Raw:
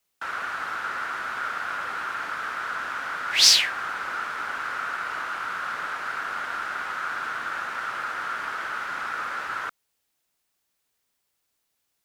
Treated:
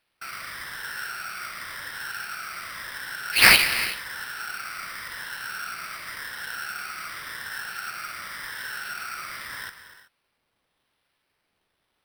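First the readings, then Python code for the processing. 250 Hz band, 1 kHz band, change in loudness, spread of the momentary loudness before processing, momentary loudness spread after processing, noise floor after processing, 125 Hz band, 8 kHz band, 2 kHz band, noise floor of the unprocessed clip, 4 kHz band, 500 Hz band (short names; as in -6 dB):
+4.0 dB, -5.5 dB, 0.0 dB, 6 LU, 13 LU, -76 dBFS, +8.5 dB, -3.0 dB, +2.0 dB, -77 dBFS, -2.5 dB, -0.5 dB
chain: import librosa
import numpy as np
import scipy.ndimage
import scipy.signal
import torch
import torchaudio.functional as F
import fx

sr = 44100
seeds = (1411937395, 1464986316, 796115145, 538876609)

y = fx.spec_ripple(x, sr, per_octave=1.1, drift_hz=-0.9, depth_db=11)
y = fx.band_shelf(y, sr, hz=540.0, db=-13.0, octaves=2.8)
y = fx.rev_gated(y, sr, seeds[0], gate_ms=400, shape='flat', drr_db=9.0)
y = fx.sample_hold(y, sr, seeds[1], rate_hz=7000.0, jitter_pct=0)
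y = fx.notch(y, sr, hz=6800.0, q=7.4)
y = y * 10.0 ** (-1.0 / 20.0)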